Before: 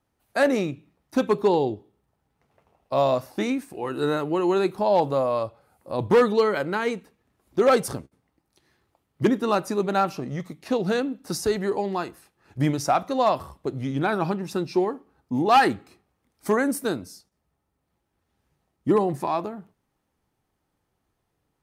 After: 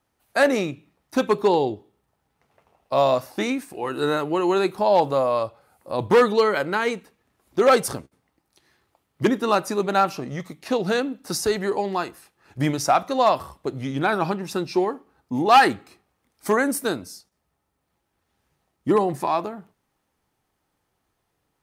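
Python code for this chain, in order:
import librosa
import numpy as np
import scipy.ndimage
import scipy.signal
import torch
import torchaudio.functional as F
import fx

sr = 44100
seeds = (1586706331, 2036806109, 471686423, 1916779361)

y = fx.low_shelf(x, sr, hz=470.0, db=-6.0)
y = y * librosa.db_to_amplitude(4.5)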